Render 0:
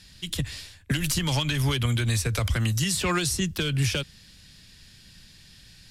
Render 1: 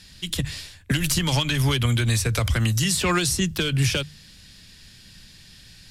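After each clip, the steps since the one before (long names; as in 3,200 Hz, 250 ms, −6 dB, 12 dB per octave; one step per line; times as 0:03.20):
mains-hum notches 50/100/150 Hz
level +3.5 dB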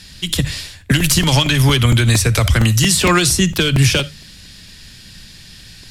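convolution reverb RT60 0.15 s, pre-delay 30 ms, DRR 17.5 dB
regular buffer underruns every 0.23 s, samples 128, repeat, from 0:01.00
level +8.5 dB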